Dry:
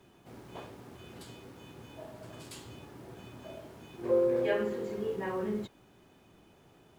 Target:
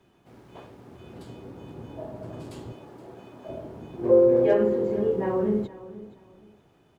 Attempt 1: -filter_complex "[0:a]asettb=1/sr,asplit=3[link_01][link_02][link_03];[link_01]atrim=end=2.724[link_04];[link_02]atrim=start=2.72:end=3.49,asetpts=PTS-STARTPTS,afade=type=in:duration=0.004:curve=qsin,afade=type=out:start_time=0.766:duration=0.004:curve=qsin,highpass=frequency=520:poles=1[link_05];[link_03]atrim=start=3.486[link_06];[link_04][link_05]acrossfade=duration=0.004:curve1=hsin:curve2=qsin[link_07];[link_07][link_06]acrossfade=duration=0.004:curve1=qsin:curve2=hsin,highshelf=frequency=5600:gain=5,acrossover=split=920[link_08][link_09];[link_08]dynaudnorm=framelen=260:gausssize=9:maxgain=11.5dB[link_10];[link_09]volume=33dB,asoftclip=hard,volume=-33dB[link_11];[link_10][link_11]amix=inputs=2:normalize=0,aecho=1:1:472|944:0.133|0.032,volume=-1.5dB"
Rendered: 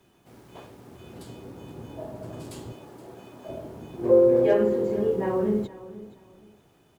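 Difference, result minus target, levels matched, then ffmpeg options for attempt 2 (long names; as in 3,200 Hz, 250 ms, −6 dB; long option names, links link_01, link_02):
8,000 Hz band +7.0 dB
-filter_complex "[0:a]asettb=1/sr,asplit=3[link_01][link_02][link_03];[link_01]atrim=end=2.724[link_04];[link_02]atrim=start=2.72:end=3.49,asetpts=PTS-STARTPTS,afade=type=in:duration=0.004:curve=qsin,afade=type=out:start_time=0.766:duration=0.004:curve=qsin,highpass=frequency=520:poles=1[link_05];[link_03]atrim=start=3.486[link_06];[link_04][link_05]acrossfade=duration=0.004:curve1=hsin:curve2=qsin[link_07];[link_07][link_06]acrossfade=duration=0.004:curve1=qsin:curve2=hsin,highshelf=frequency=5600:gain=-6,acrossover=split=920[link_08][link_09];[link_08]dynaudnorm=framelen=260:gausssize=9:maxgain=11.5dB[link_10];[link_09]volume=33dB,asoftclip=hard,volume=-33dB[link_11];[link_10][link_11]amix=inputs=2:normalize=0,aecho=1:1:472|944:0.133|0.032,volume=-1.5dB"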